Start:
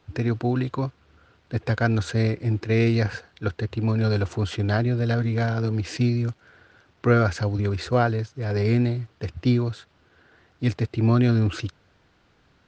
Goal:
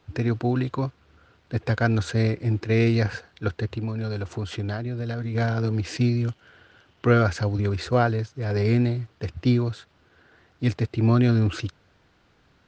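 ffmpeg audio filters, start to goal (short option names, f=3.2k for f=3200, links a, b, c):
-filter_complex "[0:a]asettb=1/sr,asplit=3[a][b][c];[a]atrim=end=3.664[d];[b]atrim=start=3.66:end=5.35,asetpts=PTS-STARTPTS,afade=t=in:d=0.004:c=qsin,afade=t=out:st=1.686:d=0.004:c=qsin,acompressor=threshold=-26dB:ratio=6[e];[c]atrim=start=5.346[f];[d][e]acrossfade=d=0.004:c1=hsin:c2=qsin[g];[g][f]acrossfade=d=0.004:c1=qsin:c2=hsin,asettb=1/sr,asplit=3[h][i][j];[h]atrim=end=6.214[k];[i]atrim=start=6.21:end=7.22,asetpts=PTS-STARTPTS,afade=t=in:d=0.004:c=qsin,afade=t=out:st=1.006:d=0.004:c=qsin,equalizer=f=3k:t=o:w=0.22:g=9.5[l];[j]atrim=start=7.216[m];[k][l]acrossfade=d=0.004:c1=hsin:c2=qsin[n];[n][m]acrossfade=d=0.004:c1=qsin:c2=hsin"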